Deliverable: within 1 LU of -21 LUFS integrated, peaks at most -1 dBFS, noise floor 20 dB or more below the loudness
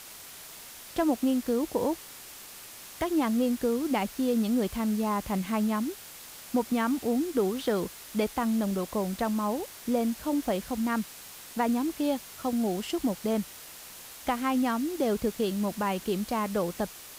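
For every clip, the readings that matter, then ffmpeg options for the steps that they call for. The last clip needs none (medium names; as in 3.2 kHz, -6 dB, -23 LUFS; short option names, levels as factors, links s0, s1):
noise floor -46 dBFS; noise floor target -50 dBFS; loudness -29.5 LUFS; peak level -14.0 dBFS; loudness target -21.0 LUFS
-> -af "afftdn=nr=6:nf=-46"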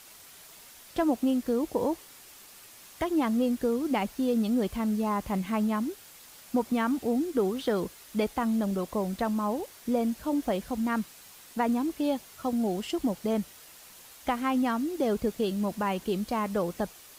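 noise floor -51 dBFS; loudness -29.5 LUFS; peak level -14.5 dBFS; loudness target -21.0 LUFS
-> -af "volume=2.66"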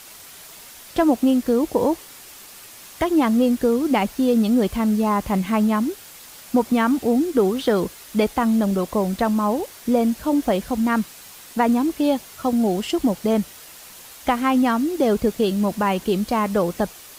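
loudness -21.0 LUFS; peak level -6.0 dBFS; noise floor -43 dBFS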